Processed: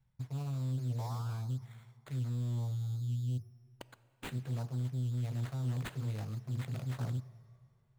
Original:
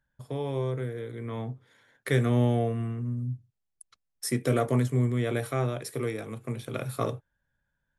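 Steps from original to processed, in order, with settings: painted sound rise, 0.98–1.42, 730–1500 Hz -38 dBFS; in parallel at -1.5 dB: limiter -21.5 dBFS, peak gain reduction 8.5 dB; on the sum: ten-band EQ 125 Hz +11 dB, 250 Hz +9 dB, 500 Hz -11 dB, 1000 Hz +3 dB, 2000 Hz -5 dB, 4000 Hz +7 dB, 8000 Hz +3 dB; reverse; compressor 6:1, threshold -28 dBFS, peak gain reduction 20 dB; reverse; fixed phaser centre 710 Hz, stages 4; soft clip -26 dBFS, distortion -22 dB; bell 92 Hz +3.5 dB 0.77 oct; sample-and-hold 8×; plate-style reverb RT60 2.3 s, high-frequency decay 0.8×, DRR 16 dB; Doppler distortion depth 0.68 ms; gain -3.5 dB

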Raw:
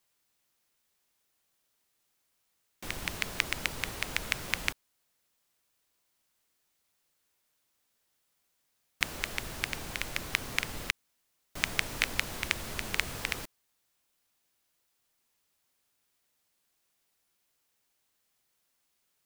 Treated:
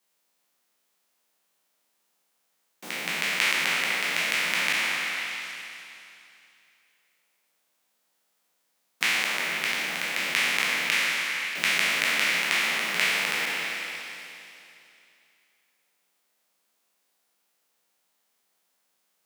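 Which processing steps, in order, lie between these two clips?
spectral trails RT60 2.79 s; Chebyshev high-pass 160 Hz, order 6; on a send: delay with a stepping band-pass 0.126 s, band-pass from 620 Hz, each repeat 0.7 oct, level -0.5 dB

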